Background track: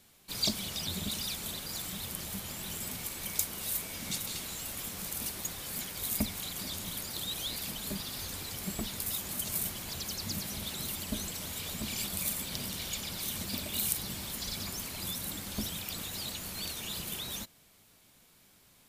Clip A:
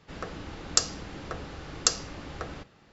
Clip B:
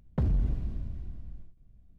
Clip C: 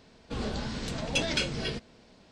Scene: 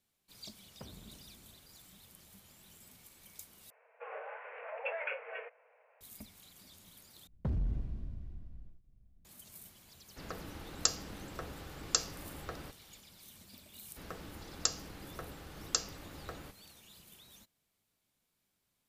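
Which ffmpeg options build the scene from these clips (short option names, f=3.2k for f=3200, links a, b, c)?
-filter_complex "[2:a]asplit=2[a][b];[1:a]asplit=2[c][d];[0:a]volume=-19.5dB[e];[a]highpass=f=610:p=1[f];[3:a]asuperpass=centerf=1100:order=20:qfactor=0.52[g];[e]asplit=3[h][i][j];[h]atrim=end=3.704[k];[g]atrim=end=2.31,asetpts=PTS-STARTPTS,volume=-4dB[l];[i]atrim=start=6.006:end=7.274[m];[b]atrim=end=1.98,asetpts=PTS-STARTPTS,volume=-7dB[n];[j]atrim=start=9.246[o];[f]atrim=end=1.98,asetpts=PTS-STARTPTS,volume=-10.5dB,afade=t=in:d=0.004:c=hsin,afade=t=out:st=1.976:d=0.004:c=hsin,adelay=630[p];[c]atrim=end=2.92,asetpts=PTS-STARTPTS,volume=-6.5dB,afade=t=in:d=0.004:c=hsin,afade=t=out:st=2.916:d=0.004:c=hsin,adelay=10080[q];[d]atrim=end=2.92,asetpts=PTS-STARTPTS,volume=-8.5dB,afade=t=in:d=0.004:c=hsin,afade=t=out:st=2.916:d=0.004:c=hsin,adelay=13880[r];[k][l]acrossfade=d=0.004:c1=hsin:c2=hsin[s];[s][m]acrossfade=d=0.004:c1=hsin:c2=hsin[t];[t][n]acrossfade=d=0.004:c1=hsin:c2=hsin[u];[u][o]acrossfade=d=0.004:c1=hsin:c2=hsin[v];[v][p][q][r]amix=inputs=4:normalize=0"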